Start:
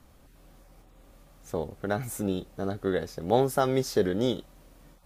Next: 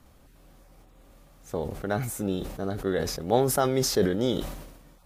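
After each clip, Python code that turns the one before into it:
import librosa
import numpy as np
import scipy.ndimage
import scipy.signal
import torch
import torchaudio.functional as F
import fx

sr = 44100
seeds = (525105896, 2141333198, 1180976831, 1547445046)

y = fx.sustainer(x, sr, db_per_s=54.0)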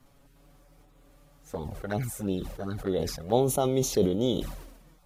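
y = fx.env_flanger(x, sr, rest_ms=7.9, full_db=-22.5)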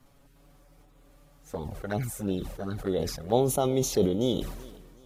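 y = fx.echo_feedback(x, sr, ms=378, feedback_pct=36, wet_db=-22)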